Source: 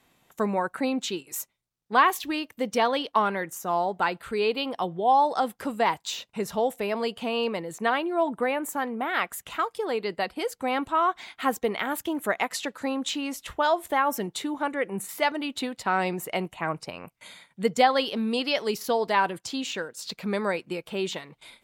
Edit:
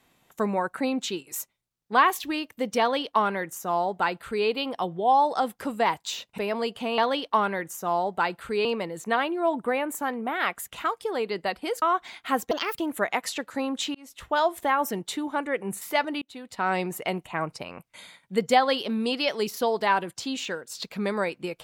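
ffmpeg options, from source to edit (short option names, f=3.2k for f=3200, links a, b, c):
-filter_complex "[0:a]asplit=9[a][b][c][d][e][f][g][h][i];[a]atrim=end=6.382[j];[b]atrim=start=6.788:end=7.392[k];[c]atrim=start=2.798:end=4.472[l];[d]atrim=start=7.388:end=10.562[m];[e]atrim=start=10.958:end=11.654[n];[f]atrim=start=11.65:end=12.06,asetpts=PTS-STARTPTS,asetrate=65268,aresample=44100[o];[g]atrim=start=12.056:end=13.22,asetpts=PTS-STARTPTS,afade=t=out:st=1.16:d=0.004:c=hsin[p];[h]atrim=start=13.22:end=15.49,asetpts=PTS-STARTPTS,afade=t=in:d=0.42,afade=t=out:st=2.266:d=0.004:c=hsin[q];[i]atrim=start=15.49,asetpts=PTS-STARTPTS,afade=t=in:d=0.51[r];[j][k]acrossfade=d=0.004:c1=hsin:c2=hsin[s];[s][l]acrossfade=d=0.004:c1=hsin:c2=hsin[t];[t][m]acrossfade=d=0.004:c1=hsin:c2=hsin[u];[u][n]acrossfade=d=0.004:c1=hsin:c2=hsin[v];[v][o]acrossfade=d=0.004:c1=hsin:c2=hsin[w];[p][q][r]concat=n=3:v=0:a=1[x];[w][x]acrossfade=d=0.004:c1=hsin:c2=hsin"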